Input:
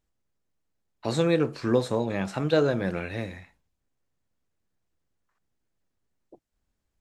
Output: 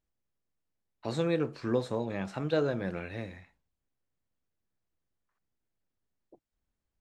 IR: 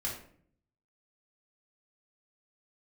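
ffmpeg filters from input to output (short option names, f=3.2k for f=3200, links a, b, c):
-af "highshelf=f=7.4k:g=-8,volume=-6dB"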